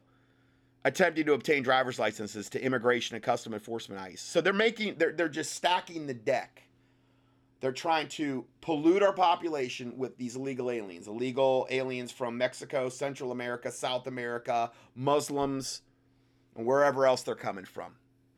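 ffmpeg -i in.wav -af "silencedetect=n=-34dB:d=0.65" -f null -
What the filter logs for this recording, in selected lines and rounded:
silence_start: 0.00
silence_end: 0.85 | silence_duration: 0.85
silence_start: 6.43
silence_end: 7.63 | silence_duration: 1.20
silence_start: 15.76
silence_end: 16.59 | silence_duration: 0.83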